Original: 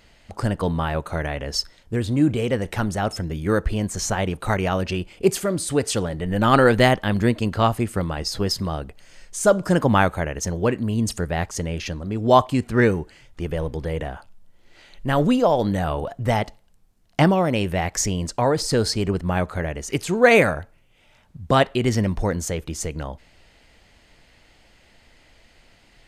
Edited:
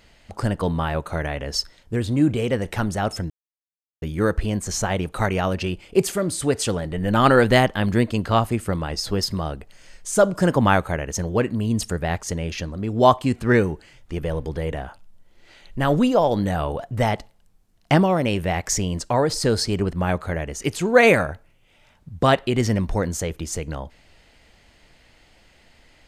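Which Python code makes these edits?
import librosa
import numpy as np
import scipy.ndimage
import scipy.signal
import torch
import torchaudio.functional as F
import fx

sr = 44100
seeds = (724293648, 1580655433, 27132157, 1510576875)

y = fx.edit(x, sr, fx.insert_silence(at_s=3.3, length_s=0.72), tone=tone)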